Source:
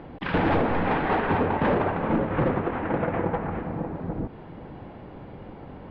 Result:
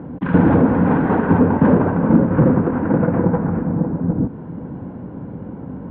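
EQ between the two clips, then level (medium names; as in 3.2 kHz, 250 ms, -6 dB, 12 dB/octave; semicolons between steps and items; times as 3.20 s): cabinet simulation 150–4000 Hz, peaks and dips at 180 Hz +4 dB, 260 Hz +7 dB, 500 Hz +5 dB, 1 kHz +7 dB, 1.5 kHz +9 dB; tilt EQ -4 dB/octave; bass shelf 230 Hz +8 dB; -3.0 dB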